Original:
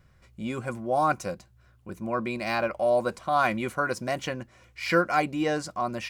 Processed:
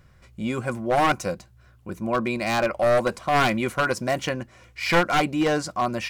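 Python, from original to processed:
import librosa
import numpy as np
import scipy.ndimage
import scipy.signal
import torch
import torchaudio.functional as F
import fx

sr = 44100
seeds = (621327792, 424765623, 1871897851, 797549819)

y = np.minimum(x, 2.0 * 10.0 ** (-21.0 / 20.0) - x)
y = fx.wow_flutter(y, sr, seeds[0], rate_hz=2.1, depth_cents=16.0)
y = y * librosa.db_to_amplitude(5.0)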